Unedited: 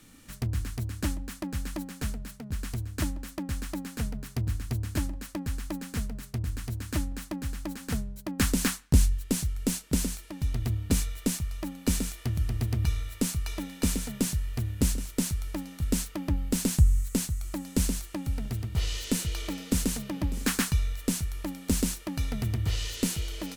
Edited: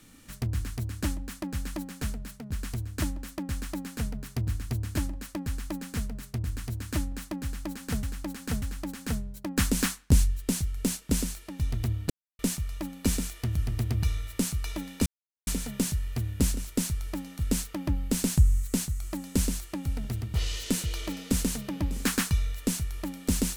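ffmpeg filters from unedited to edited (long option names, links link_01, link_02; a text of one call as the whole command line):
ffmpeg -i in.wav -filter_complex "[0:a]asplit=6[link_01][link_02][link_03][link_04][link_05][link_06];[link_01]atrim=end=8.032[link_07];[link_02]atrim=start=7.438:end=8.032[link_08];[link_03]atrim=start=7.438:end=10.92,asetpts=PTS-STARTPTS,afade=type=out:start_time=3.478:duration=0.004:curve=hsin[link_09];[link_04]atrim=start=10.92:end=11.21,asetpts=PTS-STARTPTS,volume=0[link_10];[link_05]atrim=start=11.21:end=13.88,asetpts=PTS-STARTPTS,afade=type=in:duration=0.004:curve=hsin,afade=type=out:start_time=2.666:duration=0.004:curve=hsin,apad=pad_dur=0.41[link_11];[link_06]atrim=start=13.88,asetpts=PTS-STARTPTS,afade=type=in:duration=0.004:curve=hsin[link_12];[link_07][link_08]acrossfade=duration=0.004:curve1=hsin:curve2=hsin[link_13];[link_09][link_10][link_11][link_12]concat=n=4:v=0:a=1[link_14];[link_13][link_14]acrossfade=duration=0.004:curve1=hsin:curve2=hsin" out.wav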